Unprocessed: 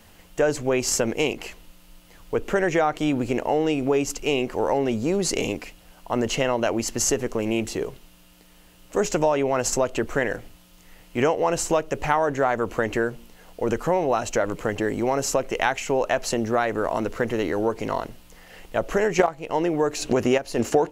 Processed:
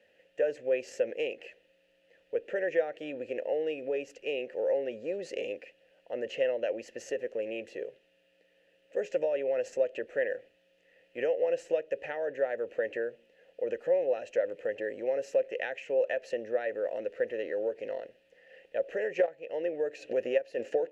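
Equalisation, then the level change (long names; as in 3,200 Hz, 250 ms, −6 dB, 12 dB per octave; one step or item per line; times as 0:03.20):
formant filter e
0.0 dB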